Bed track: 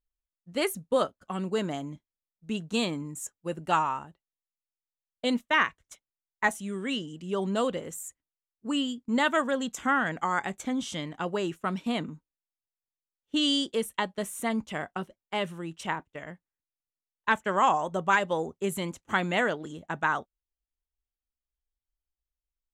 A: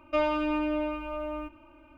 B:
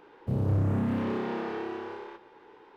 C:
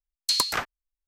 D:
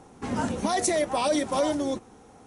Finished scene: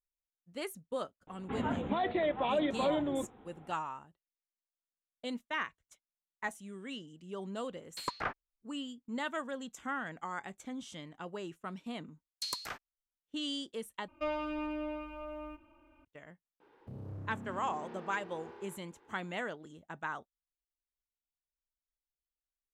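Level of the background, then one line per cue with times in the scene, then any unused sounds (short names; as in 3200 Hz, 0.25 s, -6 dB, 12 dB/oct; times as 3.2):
bed track -12 dB
1.27 add D -6 dB + steep low-pass 3700 Hz 96 dB/oct
7.68 add C -5.5 dB + LPF 1800 Hz
12.13 add C -14.5 dB
14.08 replace with A -9 dB
16.6 add B -10.5 dB + compressor 2:1, threshold -37 dBFS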